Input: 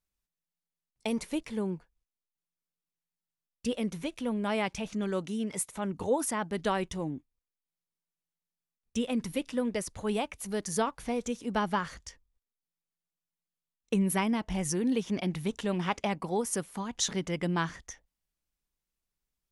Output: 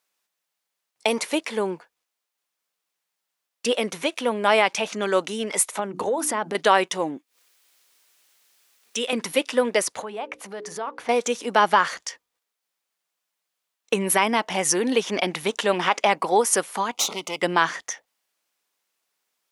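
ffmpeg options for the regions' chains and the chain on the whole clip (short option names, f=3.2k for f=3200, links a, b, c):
-filter_complex "[0:a]asettb=1/sr,asplit=3[a][b][c];[a]atrim=end=5.794[d];[b]atrim=start=5.79:end=6.55,asetpts=PTS-STARTPTS,afade=t=in:d=0.004:c=qsin,afade=t=out:st=0.756:d=0.004:c=qsin,lowshelf=f=420:g=11,bandreject=f=60:t=h:w=6,bandreject=f=120:t=h:w=6,bandreject=f=180:t=h:w=6,bandreject=f=240:t=h:w=6,bandreject=f=300:t=h:w=6,bandreject=f=360:t=h:w=6,acompressor=threshold=-31dB:ratio=8:attack=3.2:release=140:knee=1:detection=peak[e];[c]atrim=start=6.546[f];[d][e]acrossfade=d=0.004:c1=hsin:c2=qsin[g];[g][f]acrossfade=d=0.004:c1=qsin:c2=hsin,asettb=1/sr,asplit=3[h][i][j];[h]atrim=end=7.174[k];[i]atrim=start=7.17:end=9.13,asetpts=PTS-STARTPTS,afade=t=in:d=0.004:c=qsin,afade=t=out:st=1.956:d=0.004:c=qsin,highpass=290,equalizer=f=790:w=0.68:g=-7,acompressor=mode=upward:threshold=-56dB:ratio=2.5:attack=3.2:release=140:knee=2.83:detection=peak[l];[j]atrim=start=9.126[m];[k][l]acrossfade=d=0.004:c1=hsin:c2=qsin[n];[n][m]acrossfade=d=0.004:c1=qsin:c2=hsin,asettb=1/sr,asplit=3[o][p][q];[o]atrim=end=10.024[r];[p]atrim=start=10.02:end=11.09,asetpts=PTS-STARTPTS,afade=t=in:d=0.004:c=qsin,afade=t=out:st=1.066:d=0.004:c=qsin,lowpass=f=1.6k:p=1,bandreject=f=60:t=h:w=6,bandreject=f=120:t=h:w=6,bandreject=f=180:t=h:w=6,bandreject=f=240:t=h:w=6,bandreject=f=300:t=h:w=6,bandreject=f=360:t=h:w=6,bandreject=f=420:t=h:w=6,bandreject=f=480:t=h:w=6,bandreject=f=540:t=h:w=6,acompressor=threshold=-40dB:ratio=5:attack=3.2:release=140:knee=1:detection=peak[s];[q]atrim=start=11.086[t];[r][s]acrossfade=d=0.004:c1=hsin:c2=qsin[u];[u][t]acrossfade=d=0.004:c1=qsin:c2=hsin,asettb=1/sr,asplit=3[v][w][x];[v]atrim=end=16.934[y];[w]atrim=start=16.93:end=17.42,asetpts=PTS-STARTPTS,afade=t=in:d=0.004:c=qsin,afade=t=out:st=0.486:d=0.004:c=qsin,acrossover=split=820|2900|7600[z][aa][ab][ac];[z]acompressor=threshold=-38dB:ratio=3[ad];[aa]acompressor=threshold=-47dB:ratio=3[ae];[ab]acompressor=threshold=-35dB:ratio=3[af];[ac]acompressor=threshold=-42dB:ratio=3[ag];[ad][ae][af][ag]amix=inputs=4:normalize=0,aeval=exprs='clip(val(0),-1,0.00841)':c=same,asuperstop=centerf=1700:order=4:qfactor=2.1[ah];[x]atrim=start=17.416[ai];[y][ah]acrossfade=d=0.004:c1=hsin:c2=qsin[aj];[aj][ai]acrossfade=d=0.004:c1=qsin:c2=hsin,highpass=520,highshelf=f=5.9k:g=-4.5,alimiter=level_in=20dB:limit=-1dB:release=50:level=0:latency=1,volume=-4.5dB"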